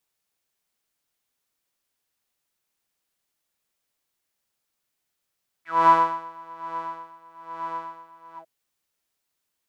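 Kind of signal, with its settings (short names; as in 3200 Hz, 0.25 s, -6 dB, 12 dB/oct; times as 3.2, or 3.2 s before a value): synth patch with tremolo E4, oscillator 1 saw, oscillator 2 saw, interval +7 st, sub -7 dB, filter bandpass, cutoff 600 Hz, Q 10, filter envelope 2 oct, filter decay 0.07 s, attack 0.216 s, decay 0.69 s, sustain -16.5 dB, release 0.08 s, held 2.72 s, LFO 1.1 Hz, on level 19.5 dB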